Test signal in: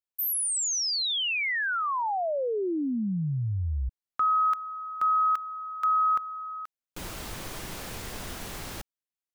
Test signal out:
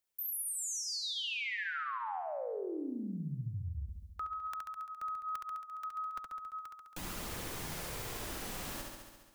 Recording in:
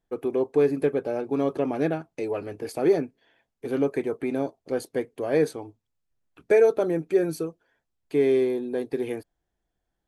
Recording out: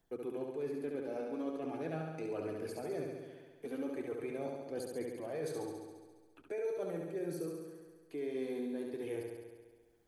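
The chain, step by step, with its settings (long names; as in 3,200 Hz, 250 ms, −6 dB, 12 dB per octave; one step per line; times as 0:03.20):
flanger 0.41 Hz, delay 0 ms, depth 4.2 ms, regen −44%
reversed playback
downward compressor, threshold −35 dBFS
reversed playback
high-shelf EQ 7,300 Hz +5 dB
flutter between parallel walls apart 11.8 metres, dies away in 1.1 s
multiband upward and downward compressor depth 40%
level −3.5 dB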